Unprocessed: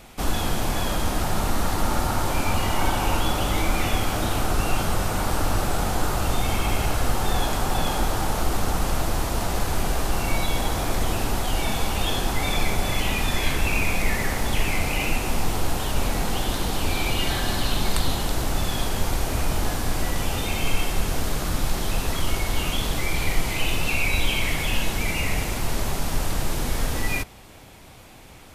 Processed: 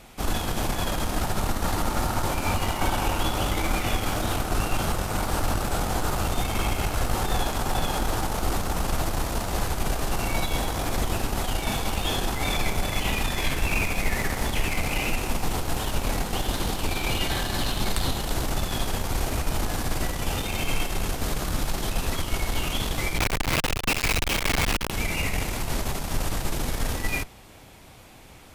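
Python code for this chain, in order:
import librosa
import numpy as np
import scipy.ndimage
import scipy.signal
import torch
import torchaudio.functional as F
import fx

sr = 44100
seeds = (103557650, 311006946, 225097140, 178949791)

y = fx.schmitt(x, sr, flips_db=-31.0, at=(23.18, 24.9))
y = fx.cheby_harmonics(y, sr, harmonics=(3, 5, 8), levels_db=(-17, -27, -28), full_scale_db=-5.5)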